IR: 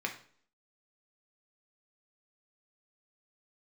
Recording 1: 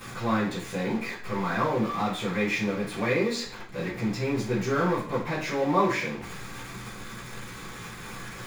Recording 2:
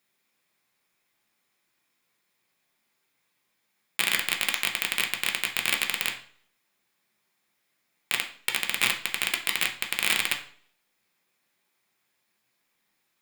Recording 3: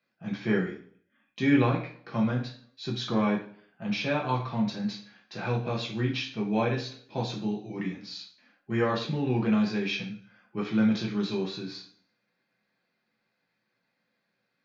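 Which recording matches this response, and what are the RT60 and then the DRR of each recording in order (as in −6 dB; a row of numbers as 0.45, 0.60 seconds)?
2; 0.55, 0.55, 0.55 seconds; −11.0, 1.5, −3.0 decibels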